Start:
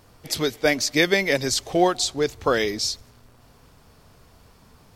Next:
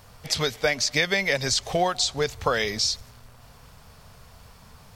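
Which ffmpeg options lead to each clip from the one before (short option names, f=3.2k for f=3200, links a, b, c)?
-filter_complex "[0:a]acrossover=split=8000[a][b];[b]acompressor=threshold=-49dB:ratio=4:attack=1:release=60[c];[a][c]amix=inputs=2:normalize=0,equalizer=f=320:w=2.1:g=-14,acompressor=threshold=-25dB:ratio=3,volume=4.5dB"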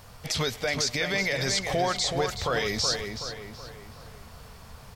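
-filter_complex "[0:a]alimiter=limit=-19dB:level=0:latency=1:release=23,asplit=2[a][b];[b]adelay=375,lowpass=f=3.4k:p=1,volume=-5.5dB,asplit=2[c][d];[d]adelay=375,lowpass=f=3.4k:p=1,volume=0.48,asplit=2[e][f];[f]adelay=375,lowpass=f=3.4k:p=1,volume=0.48,asplit=2[g][h];[h]adelay=375,lowpass=f=3.4k:p=1,volume=0.48,asplit=2[i][j];[j]adelay=375,lowpass=f=3.4k:p=1,volume=0.48,asplit=2[k][l];[l]adelay=375,lowpass=f=3.4k:p=1,volume=0.48[m];[c][e][g][i][k][m]amix=inputs=6:normalize=0[n];[a][n]amix=inputs=2:normalize=0,volume=1.5dB"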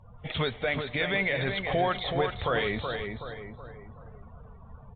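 -af "afftdn=nr=28:nf=-47,aresample=8000,aresample=44100" -ar 16000 -c:a aac -b:a 32k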